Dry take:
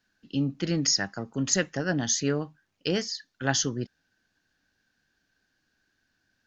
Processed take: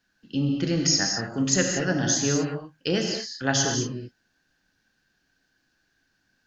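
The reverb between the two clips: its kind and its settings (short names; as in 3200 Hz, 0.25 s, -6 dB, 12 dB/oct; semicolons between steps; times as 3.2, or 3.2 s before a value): non-linear reverb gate 0.26 s flat, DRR 1.5 dB; gain +1 dB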